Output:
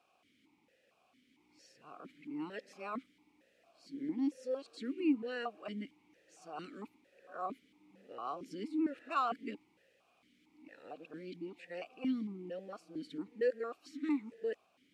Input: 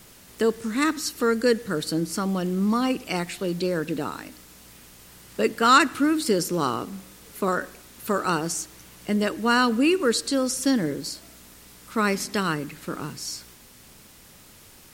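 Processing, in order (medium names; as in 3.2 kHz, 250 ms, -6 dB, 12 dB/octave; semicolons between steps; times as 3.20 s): reverse the whole clip; stepped vowel filter 4.4 Hz; trim -6 dB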